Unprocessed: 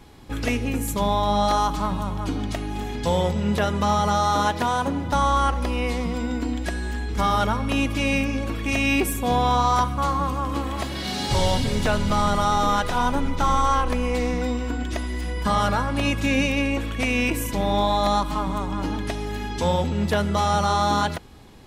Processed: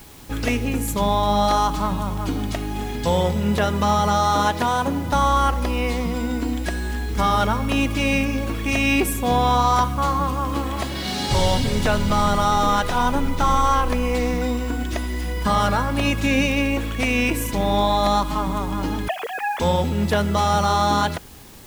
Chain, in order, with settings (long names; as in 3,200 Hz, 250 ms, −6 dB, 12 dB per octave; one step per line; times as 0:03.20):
0:19.08–0:19.60: three sine waves on the formant tracks
in parallel at −11.5 dB: bit-depth reduction 6 bits, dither triangular